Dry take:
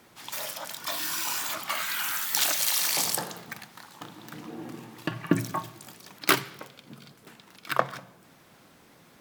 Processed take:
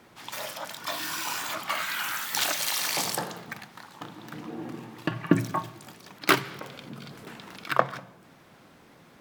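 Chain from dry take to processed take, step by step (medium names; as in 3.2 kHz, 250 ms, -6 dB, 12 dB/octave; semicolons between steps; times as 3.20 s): treble shelf 4.8 kHz -8.5 dB; 6.44–7.68 s: level flattener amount 50%; trim +2.5 dB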